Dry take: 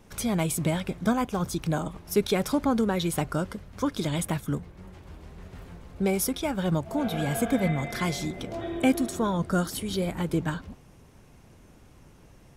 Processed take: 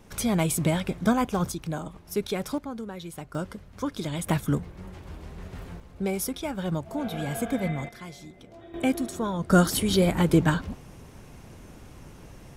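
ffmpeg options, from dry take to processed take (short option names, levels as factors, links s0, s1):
-af "asetnsamples=n=441:p=0,asendcmd='1.52 volume volume -4.5dB;2.58 volume volume -11.5dB;3.35 volume volume -3dB;4.27 volume volume 4dB;5.8 volume volume -3dB;7.89 volume volume -13.5dB;8.74 volume volume -2.5dB;9.5 volume volume 7dB',volume=1.26"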